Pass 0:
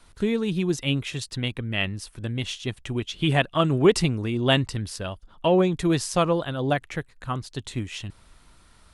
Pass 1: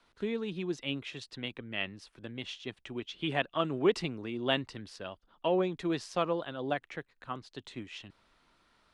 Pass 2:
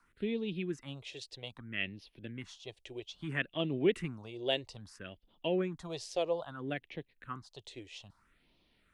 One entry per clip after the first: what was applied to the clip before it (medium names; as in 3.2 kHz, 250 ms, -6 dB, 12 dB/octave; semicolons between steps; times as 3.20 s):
three-band isolator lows -14 dB, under 200 Hz, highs -17 dB, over 5.4 kHz; trim -8 dB
phase shifter stages 4, 0.61 Hz, lowest notch 200–1400 Hz